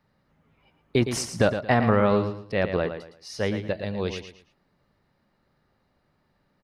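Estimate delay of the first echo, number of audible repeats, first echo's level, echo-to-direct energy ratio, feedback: 113 ms, 3, -9.0 dB, -8.5 dB, 29%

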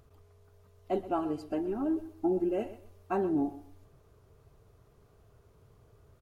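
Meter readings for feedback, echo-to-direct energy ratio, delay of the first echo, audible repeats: 24%, -14.5 dB, 126 ms, 2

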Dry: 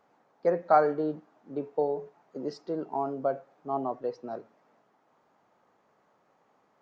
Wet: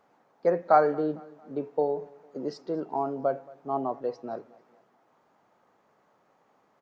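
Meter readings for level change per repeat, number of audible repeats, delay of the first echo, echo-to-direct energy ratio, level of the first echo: -7.5 dB, 2, 226 ms, -22.0 dB, -23.0 dB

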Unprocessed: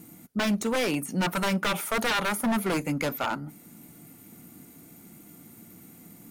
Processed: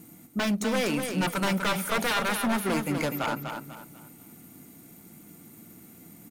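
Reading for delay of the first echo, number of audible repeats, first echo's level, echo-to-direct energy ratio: 246 ms, 3, -6.5 dB, -6.0 dB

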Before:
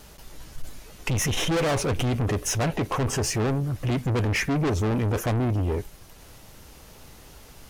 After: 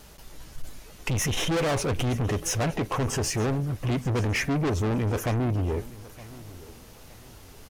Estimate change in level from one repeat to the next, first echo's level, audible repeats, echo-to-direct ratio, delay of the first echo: -9.5 dB, -19.0 dB, 2, -18.5 dB, 917 ms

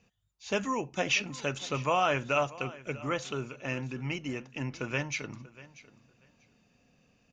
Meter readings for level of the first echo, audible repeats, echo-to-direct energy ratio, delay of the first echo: -19.0 dB, 2, -19.0 dB, 639 ms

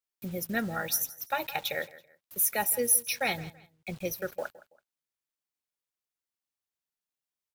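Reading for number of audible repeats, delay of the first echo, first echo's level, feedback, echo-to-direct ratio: 2, 165 ms, -18.5 dB, 29%, -18.0 dB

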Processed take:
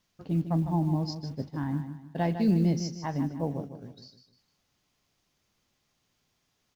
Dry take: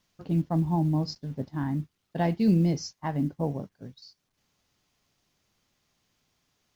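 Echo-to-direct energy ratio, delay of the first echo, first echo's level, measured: -9.0 dB, 153 ms, -9.5 dB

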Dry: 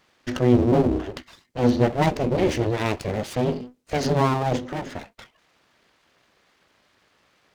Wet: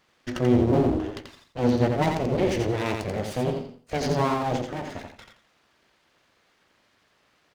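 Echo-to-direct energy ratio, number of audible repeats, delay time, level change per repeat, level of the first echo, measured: -4.5 dB, 3, 86 ms, -12.0 dB, -5.0 dB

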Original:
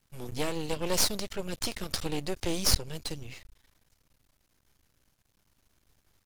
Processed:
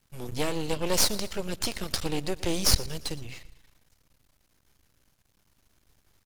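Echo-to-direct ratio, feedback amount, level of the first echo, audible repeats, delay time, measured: -18.0 dB, 47%, -19.0 dB, 3, 116 ms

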